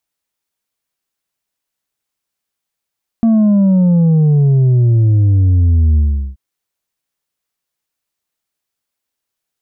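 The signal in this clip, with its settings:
bass drop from 230 Hz, over 3.13 s, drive 4 dB, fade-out 0.39 s, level −8 dB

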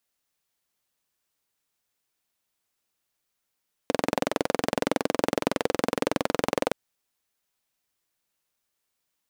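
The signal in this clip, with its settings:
pulse-train model of a single-cylinder engine, steady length 2.82 s, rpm 2,600, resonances 290/480 Hz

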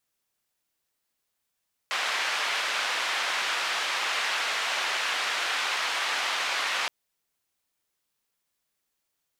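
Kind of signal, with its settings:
band-limited noise 850–2,900 Hz, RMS −28.5 dBFS 4.97 s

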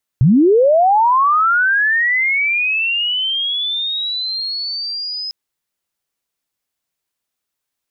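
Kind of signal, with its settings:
glide linear 110 Hz → 5,100 Hz −7 dBFS → −22 dBFS 5.10 s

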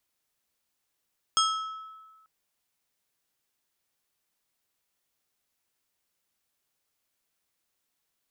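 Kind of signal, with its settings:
struck glass plate, lowest mode 1,300 Hz, decay 1.44 s, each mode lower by 2 dB, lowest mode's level −21.5 dB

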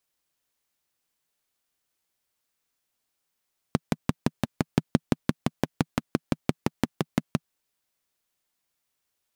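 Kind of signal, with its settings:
pulse-train model of a single-cylinder engine, steady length 3.66 s, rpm 700, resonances 160/230 Hz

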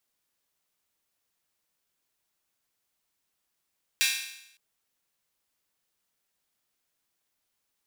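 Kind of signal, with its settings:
open synth hi-hat length 0.56 s, high-pass 2,300 Hz, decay 0.80 s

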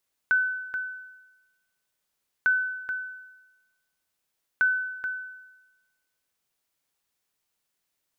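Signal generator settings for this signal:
ping with an echo 1,510 Hz, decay 1.08 s, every 2.15 s, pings 3, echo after 0.43 s, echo −8.5 dB −16 dBFS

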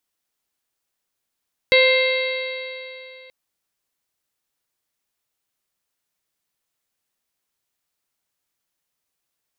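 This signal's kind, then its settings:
stiff-string partials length 1.58 s, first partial 515 Hz, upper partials −17/−18.5/−0.5/−9/−14/−6/−12 dB, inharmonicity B 0.0028, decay 2.93 s, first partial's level −13.5 dB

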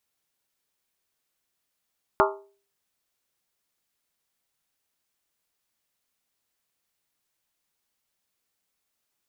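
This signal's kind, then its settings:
struck skin, lowest mode 398 Hz, modes 8, decay 0.43 s, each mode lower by 0.5 dB, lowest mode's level −19 dB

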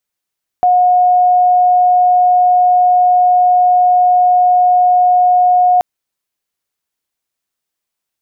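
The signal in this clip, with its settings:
tone sine 723 Hz −6.5 dBFS 5.18 s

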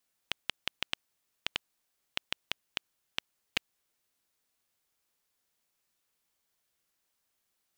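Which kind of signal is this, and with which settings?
Geiger counter clicks 4.4 per second −10.5 dBFS 3.40 s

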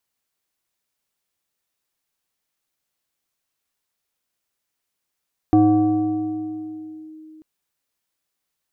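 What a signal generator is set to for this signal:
two-operator FM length 1.89 s, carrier 313 Hz, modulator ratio 1.34, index 0.65, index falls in 1.62 s linear, decay 3.47 s, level −9.5 dB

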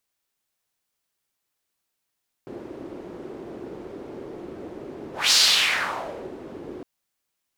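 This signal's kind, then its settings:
pass-by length 4.36 s, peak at 0:02.85, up 0.21 s, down 1.08 s, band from 360 Hz, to 4,700 Hz, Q 2.6, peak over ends 21 dB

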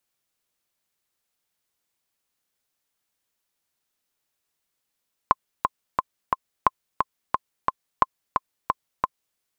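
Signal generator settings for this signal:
click track 177 BPM, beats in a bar 4, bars 3, 1,050 Hz, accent 4.5 dB −2.5 dBFS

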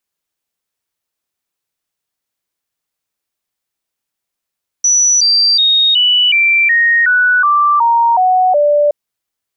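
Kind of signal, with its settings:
stepped sweep 5,920 Hz down, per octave 3, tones 11, 0.37 s, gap 0.00 s −7.5 dBFS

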